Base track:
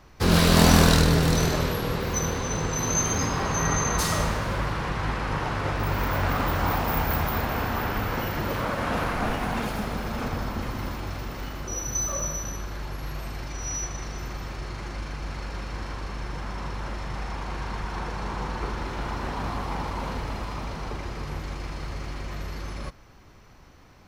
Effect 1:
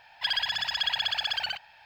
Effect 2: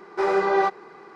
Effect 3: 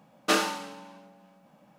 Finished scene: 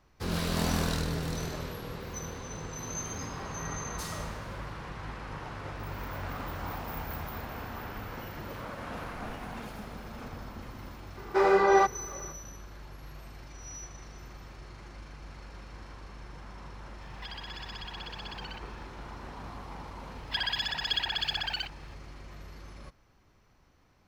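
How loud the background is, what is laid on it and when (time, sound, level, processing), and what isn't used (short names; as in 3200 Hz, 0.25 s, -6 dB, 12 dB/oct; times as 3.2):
base track -12.5 dB
11.17 add 2 -1 dB
17.01 add 1 -1 dB + compressor, threshold -40 dBFS
20.1 add 1 -0.5 dB + harmonic tremolo 3 Hz, depth 50%, crossover 2200 Hz
not used: 3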